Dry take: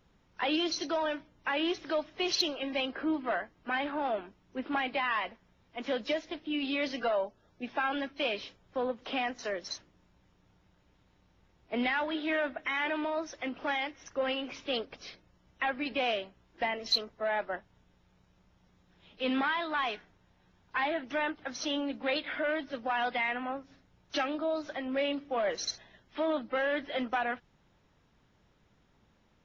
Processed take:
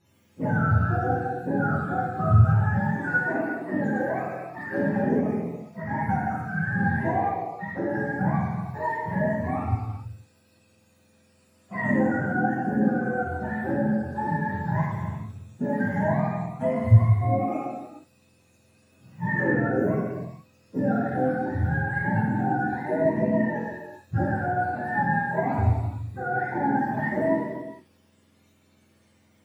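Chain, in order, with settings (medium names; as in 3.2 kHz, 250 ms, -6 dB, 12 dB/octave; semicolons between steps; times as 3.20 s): spectrum inverted on a logarithmic axis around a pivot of 680 Hz; gated-style reverb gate 500 ms falling, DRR -7.5 dB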